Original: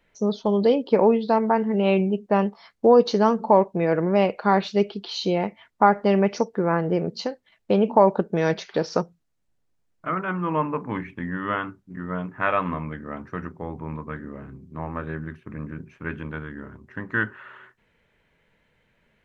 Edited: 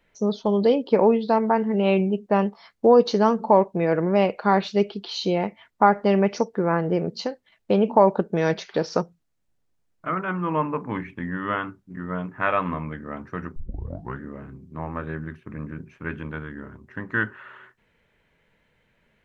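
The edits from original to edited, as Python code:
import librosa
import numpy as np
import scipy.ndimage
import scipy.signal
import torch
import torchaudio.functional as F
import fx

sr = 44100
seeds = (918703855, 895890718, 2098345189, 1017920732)

y = fx.edit(x, sr, fx.tape_start(start_s=13.56, length_s=0.65), tone=tone)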